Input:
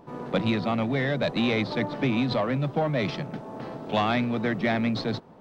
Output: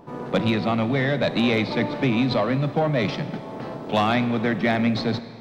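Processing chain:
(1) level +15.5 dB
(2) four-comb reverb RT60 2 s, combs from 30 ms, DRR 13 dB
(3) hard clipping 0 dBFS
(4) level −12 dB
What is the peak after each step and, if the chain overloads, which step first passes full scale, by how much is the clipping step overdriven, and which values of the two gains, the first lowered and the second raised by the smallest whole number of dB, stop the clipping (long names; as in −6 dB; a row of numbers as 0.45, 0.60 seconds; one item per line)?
+2.5, +3.0, 0.0, −12.0 dBFS
step 1, 3.0 dB
step 1 +12.5 dB, step 4 −9 dB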